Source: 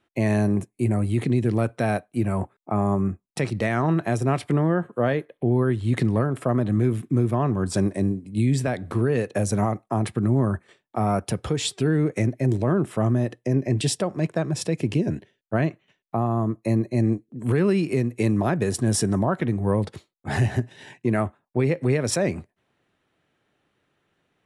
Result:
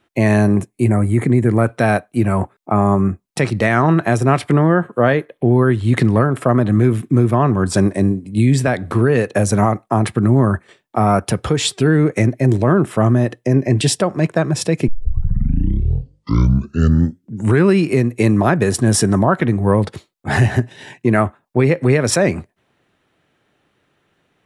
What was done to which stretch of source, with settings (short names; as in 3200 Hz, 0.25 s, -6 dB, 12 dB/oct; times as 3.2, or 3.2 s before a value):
0.91–1.67 spectral gain 2400–6500 Hz -11 dB
14.88 tape start 2.86 s
whole clip: dynamic EQ 1400 Hz, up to +4 dB, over -39 dBFS, Q 1.1; gain +7.5 dB